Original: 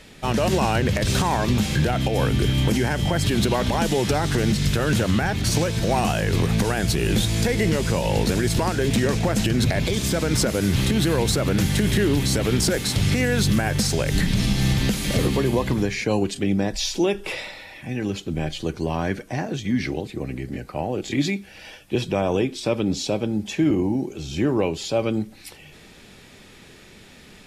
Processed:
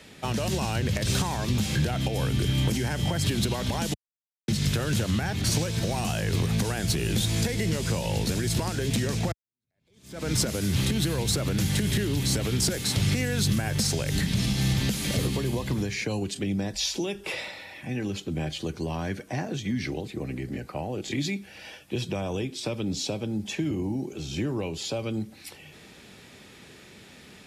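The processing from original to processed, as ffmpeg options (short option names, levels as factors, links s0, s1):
-filter_complex "[0:a]asplit=4[s0][s1][s2][s3];[s0]atrim=end=3.94,asetpts=PTS-STARTPTS,afade=t=out:st=3.936:d=0.004:c=hsin[s4];[s1]atrim=start=3.94:end=4.48,asetpts=PTS-STARTPTS,volume=0[s5];[s2]atrim=start=4.48:end=9.32,asetpts=PTS-STARTPTS,afade=t=in:d=0.004:c=hsin,afade=t=out:st=4.836:d=0.004:c=hsin[s6];[s3]atrim=start=9.32,asetpts=PTS-STARTPTS,afade=t=in:d=0.97:c=exp[s7];[s4][s5][s6][s7]concat=n=4:v=0:a=1,highpass=70,acrossover=split=160|3000[s8][s9][s10];[s9]acompressor=threshold=0.0447:ratio=6[s11];[s8][s11][s10]amix=inputs=3:normalize=0,volume=0.794"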